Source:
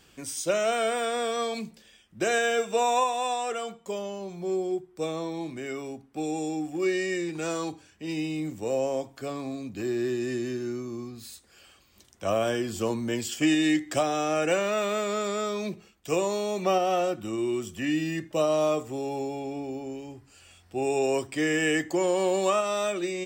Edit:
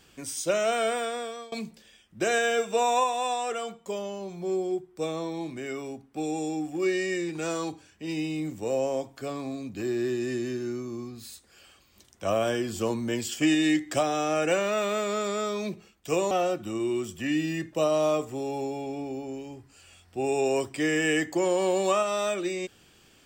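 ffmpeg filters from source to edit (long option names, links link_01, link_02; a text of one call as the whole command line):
ffmpeg -i in.wav -filter_complex "[0:a]asplit=3[link_01][link_02][link_03];[link_01]atrim=end=1.52,asetpts=PTS-STARTPTS,afade=type=out:start_time=0.9:duration=0.62:silence=0.0891251[link_04];[link_02]atrim=start=1.52:end=16.312,asetpts=PTS-STARTPTS,afade=type=in:duration=0.004:curve=hsin:silence=0.0891251[link_05];[link_03]atrim=start=16.888[link_06];[link_04][link_05]concat=n=2:v=0:a=1[link_07];[link_07][link_06]acrossfade=duration=0.004:curve1=hsin:curve2=hsin" out.wav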